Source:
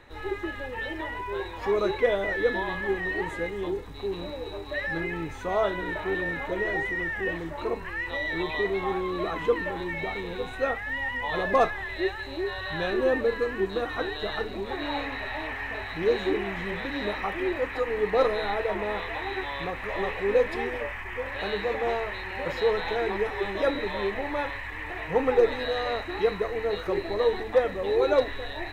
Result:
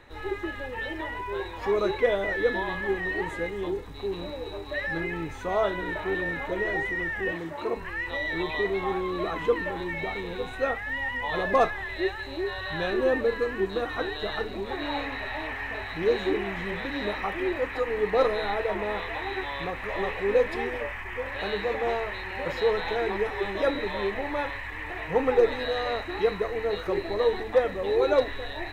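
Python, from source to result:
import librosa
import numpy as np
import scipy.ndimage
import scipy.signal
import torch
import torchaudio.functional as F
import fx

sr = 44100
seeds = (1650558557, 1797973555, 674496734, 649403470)

y = fx.highpass(x, sr, hz=120.0, slope=12, at=(7.32, 7.76))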